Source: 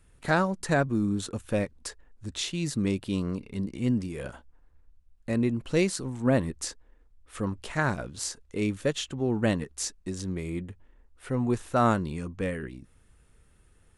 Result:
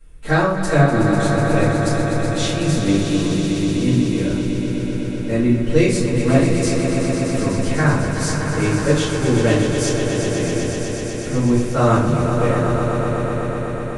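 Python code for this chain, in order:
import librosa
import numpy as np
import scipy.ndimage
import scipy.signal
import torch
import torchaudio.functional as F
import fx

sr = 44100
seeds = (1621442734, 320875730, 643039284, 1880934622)

p1 = x + fx.echo_swell(x, sr, ms=124, loudest=5, wet_db=-9.0, dry=0)
p2 = fx.room_shoebox(p1, sr, seeds[0], volume_m3=48.0, walls='mixed', distance_m=2.3)
y = p2 * 10.0 ** (-4.0 / 20.0)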